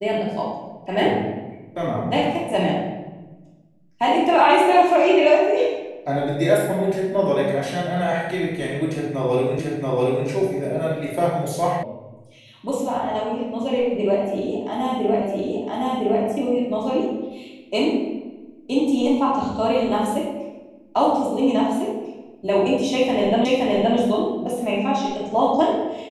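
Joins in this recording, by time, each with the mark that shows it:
9.59 repeat of the last 0.68 s
11.83 sound cut off
15.22 repeat of the last 1.01 s
23.45 repeat of the last 0.52 s

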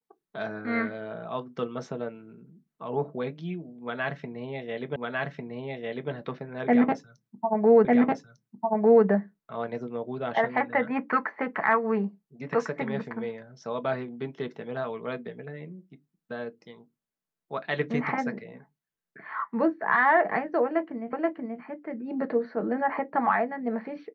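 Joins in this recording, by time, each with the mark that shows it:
4.96 repeat of the last 1.15 s
7.85 repeat of the last 1.2 s
21.13 repeat of the last 0.48 s

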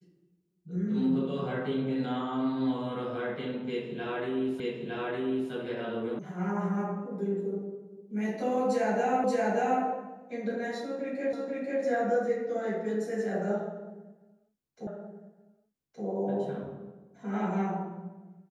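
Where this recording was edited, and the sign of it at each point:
4.6 repeat of the last 0.91 s
6.19 sound cut off
9.24 repeat of the last 0.58 s
11.33 repeat of the last 0.49 s
14.87 repeat of the last 1.17 s

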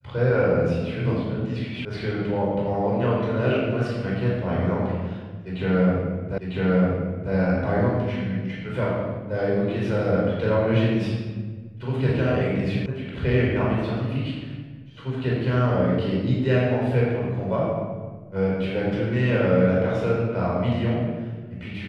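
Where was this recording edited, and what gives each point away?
1.85 sound cut off
6.38 repeat of the last 0.95 s
12.86 sound cut off

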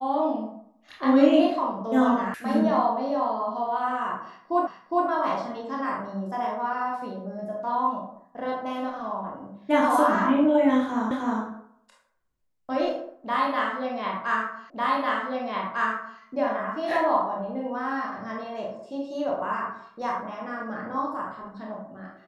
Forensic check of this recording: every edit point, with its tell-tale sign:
2.34 sound cut off
4.67 repeat of the last 0.41 s
11.11 repeat of the last 0.31 s
14.7 repeat of the last 1.5 s

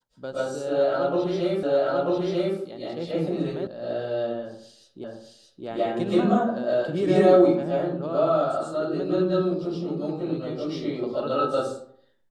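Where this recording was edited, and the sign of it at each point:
1.63 repeat of the last 0.94 s
3.67 sound cut off
5.04 repeat of the last 0.62 s

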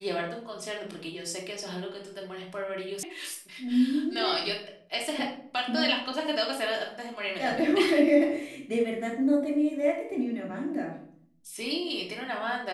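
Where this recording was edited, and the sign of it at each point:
3.03 sound cut off

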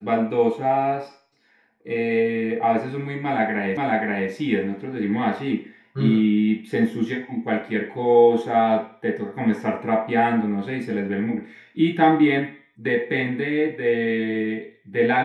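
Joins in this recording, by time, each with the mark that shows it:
3.77 repeat of the last 0.53 s

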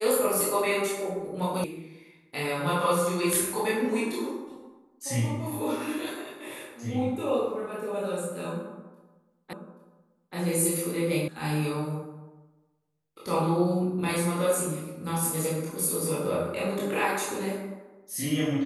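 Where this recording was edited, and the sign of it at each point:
1.64 sound cut off
9.53 repeat of the last 0.83 s
11.28 sound cut off

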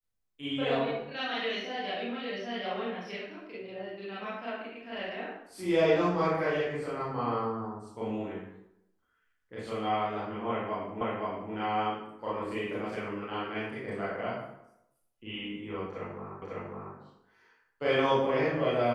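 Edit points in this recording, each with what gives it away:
11.01 repeat of the last 0.52 s
16.42 repeat of the last 0.55 s

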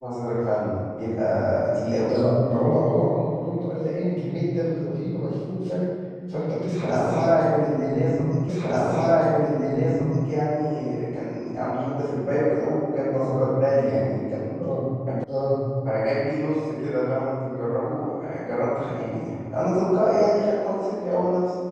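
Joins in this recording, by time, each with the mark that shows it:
8.49 repeat of the last 1.81 s
15.24 sound cut off

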